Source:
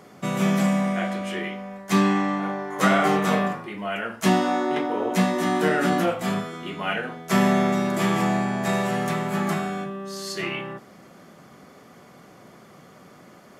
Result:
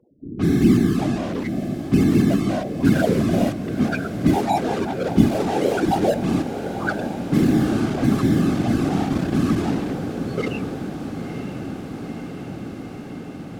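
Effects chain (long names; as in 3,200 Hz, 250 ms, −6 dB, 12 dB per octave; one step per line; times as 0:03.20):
frequency shifter +41 Hz
0:02.14–0:03.97: EQ curve with evenly spaced ripples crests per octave 1.5, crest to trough 16 dB
automatic gain control gain up to 9 dB
spectral peaks only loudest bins 2
in parallel at −7.5 dB: bit reduction 4 bits
on the sum: low-shelf EQ 490 Hz −3 dB
low-pass that shuts in the quiet parts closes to 1,300 Hz, open at −16 dBFS
random phases in short frames
on a send: feedback delay with all-pass diffusion 949 ms, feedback 77%, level −10.5 dB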